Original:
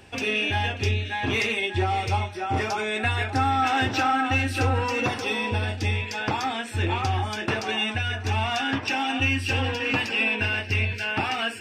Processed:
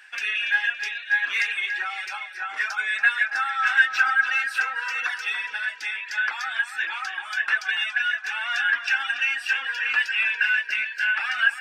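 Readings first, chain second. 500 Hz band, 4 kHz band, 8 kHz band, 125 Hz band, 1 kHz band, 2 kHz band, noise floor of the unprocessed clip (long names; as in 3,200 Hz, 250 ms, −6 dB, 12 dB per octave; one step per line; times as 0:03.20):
below −20 dB, −1.5 dB, −3.5 dB, below −40 dB, −5.5 dB, +6.5 dB, −35 dBFS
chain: reverb reduction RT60 1.1 s
high-pass with resonance 1,600 Hz, resonance Q 6.4
tape delay 282 ms, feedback 40%, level −9 dB, low-pass 4,100 Hz
level −3 dB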